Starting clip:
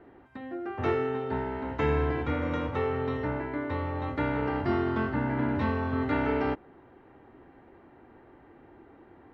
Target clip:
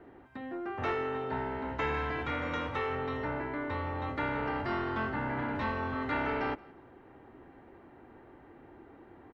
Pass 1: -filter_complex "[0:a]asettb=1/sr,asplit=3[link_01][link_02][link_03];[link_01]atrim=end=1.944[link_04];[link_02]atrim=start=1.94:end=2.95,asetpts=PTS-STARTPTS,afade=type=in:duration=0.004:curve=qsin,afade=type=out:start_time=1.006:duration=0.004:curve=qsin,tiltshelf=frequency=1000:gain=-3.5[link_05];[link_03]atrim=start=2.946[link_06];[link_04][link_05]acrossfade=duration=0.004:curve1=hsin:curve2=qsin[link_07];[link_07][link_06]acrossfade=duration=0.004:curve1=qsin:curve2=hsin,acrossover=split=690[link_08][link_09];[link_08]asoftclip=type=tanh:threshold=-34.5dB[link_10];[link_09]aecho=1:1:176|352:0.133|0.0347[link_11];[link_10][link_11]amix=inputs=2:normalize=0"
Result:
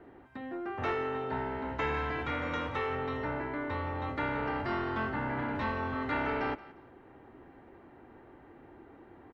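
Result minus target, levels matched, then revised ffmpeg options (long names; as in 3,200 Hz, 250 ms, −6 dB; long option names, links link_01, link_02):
echo-to-direct +6 dB
-filter_complex "[0:a]asettb=1/sr,asplit=3[link_01][link_02][link_03];[link_01]atrim=end=1.944[link_04];[link_02]atrim=start=1.94:end=2.95,asetpts=PTS-STARTPTS,afade=type=in:duration=0.004:curve=qsin,afade=type=out:start_time=1.006:duration=0.004:curve=qsin,tiltshelf=frequency=1000:gain=-3.5[link_05];[link_03]atrim=start=2.946[link_06];[link_04][link_05]acrossfade=duration=0.004:curve1=hsin:curve2=qsin[link_07];[link_07][link_06]acrossfade=duration=0.004:curve1=qsin:curve2=hsin,acrossover=split=690[link_08][link_09];[link_08]asoftclip=type=tanh:threshold=-34.5dB[link_10];[link_09]aecho=1:1:176|352:0.0668|0.0174[link_11];[link_10][link_11]amix=inputs=2:normalize=0"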